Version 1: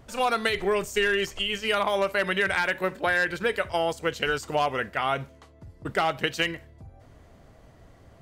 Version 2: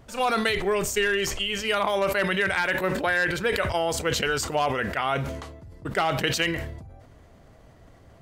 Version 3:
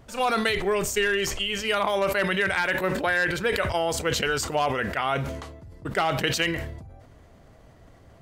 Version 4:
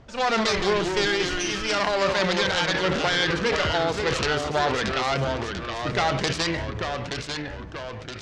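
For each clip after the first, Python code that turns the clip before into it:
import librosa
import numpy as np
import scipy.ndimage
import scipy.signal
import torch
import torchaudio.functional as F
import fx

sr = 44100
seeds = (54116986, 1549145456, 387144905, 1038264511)

y1 = fx.sustainer(x, sr, db_per_s=47.0)
y2 = y1
y3 = fx.self_delay(y2, sr, depth_ms=0.29)
y3 = fx.echo_pitch(y3, sr, ms=111, semitones=-2, count=3, db_per_echo=-6.0)
y3 = scipy.signal.sosfilt(scipy.signal.butter(4, 6200.0, 'lowpass', fs=sr, output='sos'), y3)
y3 = y3 * librosa.db_to_amplitude(1.5)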